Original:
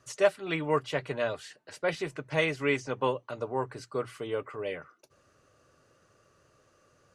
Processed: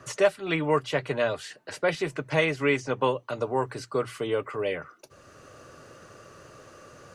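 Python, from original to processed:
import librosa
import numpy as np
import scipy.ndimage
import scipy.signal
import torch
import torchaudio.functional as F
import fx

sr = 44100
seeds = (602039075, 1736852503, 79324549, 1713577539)

y = fx.band_squash(x, sr, depth_pct=40)
y = y * 10.0 ** (4.5 / 20.0)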